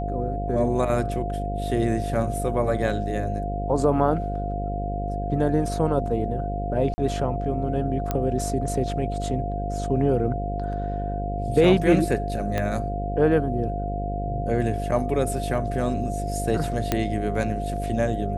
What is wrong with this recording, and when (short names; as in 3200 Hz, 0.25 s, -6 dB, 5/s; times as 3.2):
buzz 50 Hz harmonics 12 -29 dBFS
tone 700 Hz -30 dBFS
6.94–6.98 gap 40 ms
8.11 pop -11 dBFS
12.58 pop -12 dBFS
16.92 pop -7 dBFS